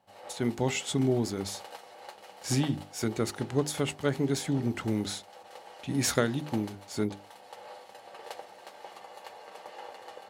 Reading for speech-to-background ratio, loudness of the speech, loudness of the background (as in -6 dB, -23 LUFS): 17.0 dB, -30.5 LUFS, -47.5 LUFS